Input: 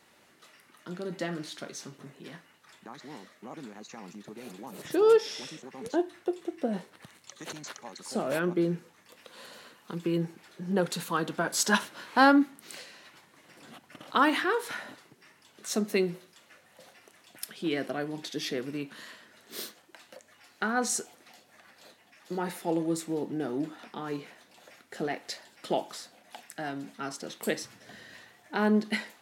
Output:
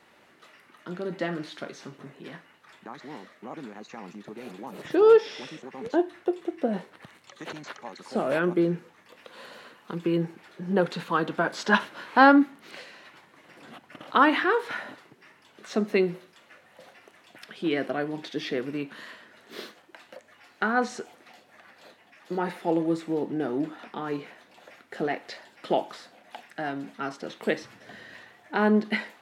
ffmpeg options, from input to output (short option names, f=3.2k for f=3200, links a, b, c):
-filter_complex "[0:a]asettb=1/sr,asplit=3[a][b][c];[a]atrim=end=8.174[d];[b]atrim=start=8.17:end=8.6,asetpts=PTS-STARTPTS,afade=t=in:d=0.004:c=qsin,afade=t=out:st=0.426:d=0.004:c=qsin,equalizer=f=10k:w=1.2:g=9.5[e];[c]atrim=start=8.596[f];[d][e]acrossfade=d=0.004:c1=hsin:c2=qsin[g];[g][f]acrossfade=d=0.004:c1=qsin:c2=hsin,acrossover=split=5200[h][i];[i]acompressor=threshold=-51dB:ratio=4:attack=1:release=60[j];[h][j]amix=inputs=2:normalize=0,bass=f=250:g=-3,treble=f=4k:g=-10,volume=4.5dB"